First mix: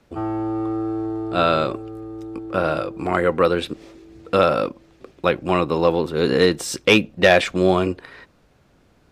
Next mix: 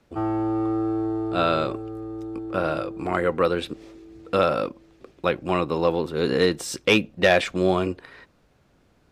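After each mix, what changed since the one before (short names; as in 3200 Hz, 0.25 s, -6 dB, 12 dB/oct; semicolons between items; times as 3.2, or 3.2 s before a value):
speech -4.0 dB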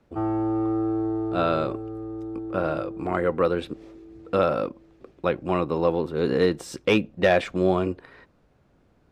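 master: add high shelf 2000 Hz -9 dB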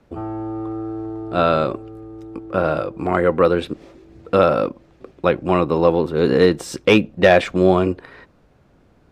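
speech +7.0 dB; reverb: off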